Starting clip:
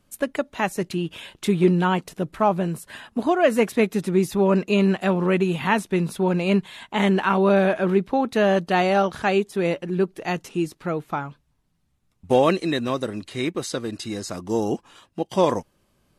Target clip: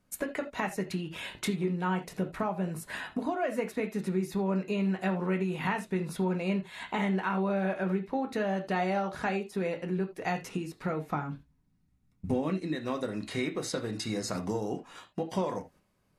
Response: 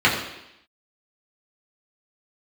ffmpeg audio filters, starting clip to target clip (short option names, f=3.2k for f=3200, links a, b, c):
-filter_complex "[0:a]agate=range=-9dB:threshold=-49dB:ratio=16:detection=peak,asettb=1/sr,asplit=3[a][b][c];[a]atrim=end=11.144[d];[b]atrim=start=11.14:end=12.73,asetpts=PTS-STARTPTS,afade=t=in:d=0.004:c=qsin,afade=t=out:st=1.586:d=0.004:c=qsin,lowshelf=f=400:t=q:w=1.5:g=7[e];[c]atrim=start=12.726[f];[d][e]acrossfade=d=0.004:c1=hsin:c2=qsin[g];[g][f]acrossfade=d=0.004:c1=qsin:c2=hsin,acompressor=threshold=-31dB:ratio=6,asplit=2[h][i];[1:a]atrim=start_sample=2205,atrim=end_sample=3969[j];[i][j]afir=irnorm=-1:irlink=0,volume=-22.5dB[k];[h][k]amix=inputs=2:normalize=0"